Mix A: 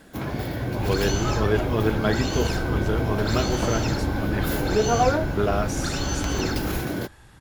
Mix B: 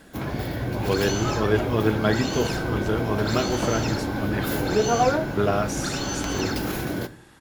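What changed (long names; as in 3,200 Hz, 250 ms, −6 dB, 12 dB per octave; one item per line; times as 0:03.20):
speech: send on
second sound: add low shelf with overshoot 170 Hz −11.5 dB, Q 1.5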